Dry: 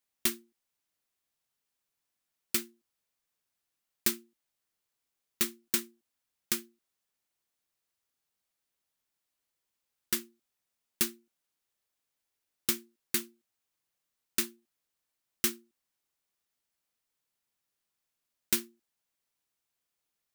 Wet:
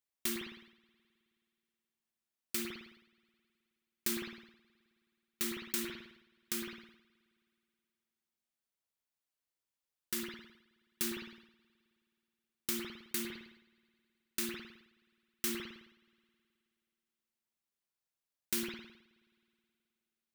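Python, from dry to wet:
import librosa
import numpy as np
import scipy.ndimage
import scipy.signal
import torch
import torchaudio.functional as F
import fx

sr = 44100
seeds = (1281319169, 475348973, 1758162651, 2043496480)

y = fx.rev_spring(x, sr, rt60_s=2.7, pass_ms=(53,), chirp_ms=50, drr_db=14.0)
y = fx.sustainer(y, sr, db_per_s=75.0)
y = F.gain(torch.from_numpy(y), -8.0).numpy()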